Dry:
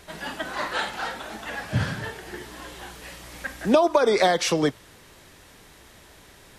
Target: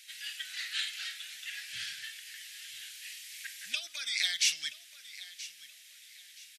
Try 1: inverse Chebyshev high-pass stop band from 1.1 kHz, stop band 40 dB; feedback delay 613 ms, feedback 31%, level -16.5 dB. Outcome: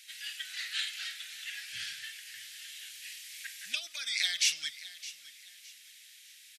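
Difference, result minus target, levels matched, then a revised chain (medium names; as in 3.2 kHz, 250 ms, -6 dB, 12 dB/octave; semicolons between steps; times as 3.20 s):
echo 363 ms early
inverse Chebyshev high-pass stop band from 1.1 kHz, stop band 40 dB; feedback delay 976 ms, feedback 31%, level -16.5 dB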